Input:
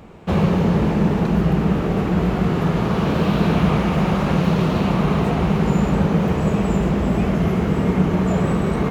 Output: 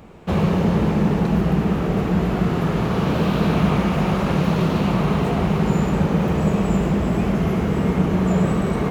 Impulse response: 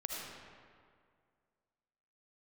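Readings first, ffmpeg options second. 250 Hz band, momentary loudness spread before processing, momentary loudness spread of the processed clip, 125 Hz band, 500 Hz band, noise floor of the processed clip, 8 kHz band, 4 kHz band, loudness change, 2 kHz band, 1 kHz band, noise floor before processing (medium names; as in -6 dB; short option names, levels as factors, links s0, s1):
-1.0 dB, 2 LU, 2 LU, -1.0 dB, -1.0 dB, -23 dBFS, no reading, -0.5 dB, -1.0 dB, -1.0 dB, -1.0 dB, -22 dBFS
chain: -filter_complex "[0:a]asplit=2[s0][s1];[1:a]atrim=start_sample=2205,highshelf=f=6300:g=9.5[s2];[s1][s2]afir=irnorm=-1:irlink=0,volume=0.473[s3];[s0][s3]amix=inputs=2:normalize=0,volume=0.631"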